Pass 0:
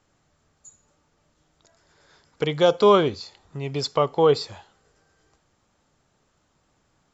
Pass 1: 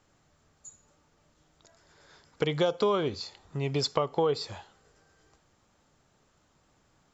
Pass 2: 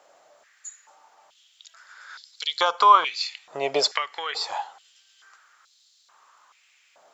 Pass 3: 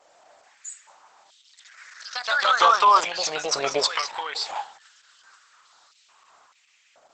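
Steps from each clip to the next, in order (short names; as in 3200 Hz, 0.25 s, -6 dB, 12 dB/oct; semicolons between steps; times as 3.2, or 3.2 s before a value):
compressor 6:1, threshold -23 dBFS, peak gain reduction 12 dB
stepped high-pass 2.3 Hz 620–4100 Hz; gain +8 dB
echoes that change speed 0.103 s, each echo +2 st, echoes 3; Opus 10 kbps 48000 Hz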